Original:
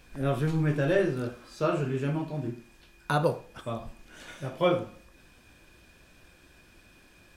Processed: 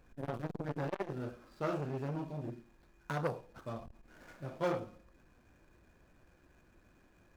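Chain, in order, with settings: median filter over 15 samples; transformer saturation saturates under 920 Hz; trim -6 dB

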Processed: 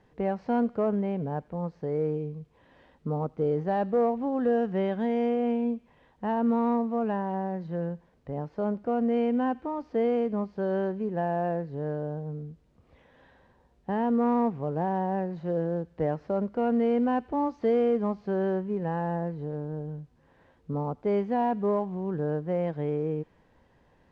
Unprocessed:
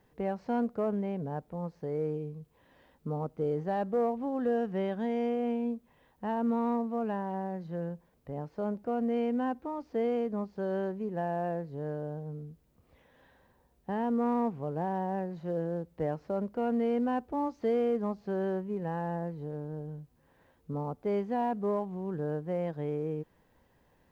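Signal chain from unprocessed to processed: distance through air 84 m; on a send: feedback echo behind a high-pass 91 ms, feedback 58%, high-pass 2.1 kHz, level -17.5 dB; on the sum: trim +4.5 dB

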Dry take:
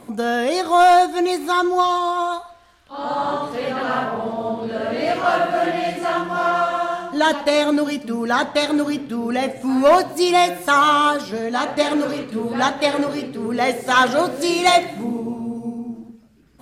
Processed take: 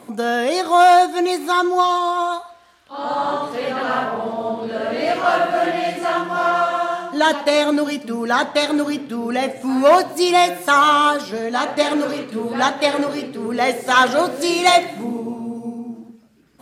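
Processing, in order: high-pass 200 Hz 6 dB/octave; trim +1.5 dB

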